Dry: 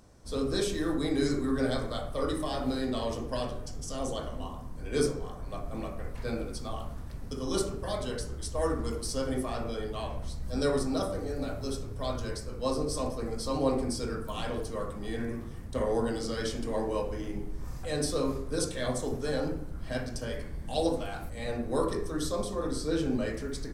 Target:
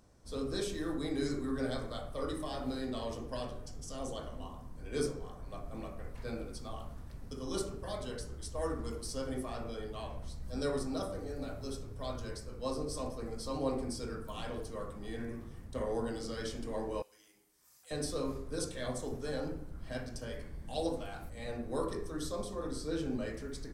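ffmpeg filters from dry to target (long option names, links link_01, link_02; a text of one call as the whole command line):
ffmpeg -i in.wav -filter_complex "[0:a]asettb=1/sr,asplit=3[link_01][link_02][link_03];[link_01]atrim=end=17.024[link_04];[link_02]atrim=start=17.02:end=17.91,asetpts=PTS-STARTPTS,afade=type=in:duration=0.004:curve=qsin,afade=type=out:start_time=0.886:duration=0.004:curve=qsin,aderivative[link_05];[link_03]atrim=start=17.906[link_06];[link_04][link_05]acrossfade=duration=0.004:curve1=hsin:curve2=qsin[link_07];[link_07][link_06]acrossfade=duration=0.004:curve1=qsin:curve2=hsin,volume=-6.5dB" out.wav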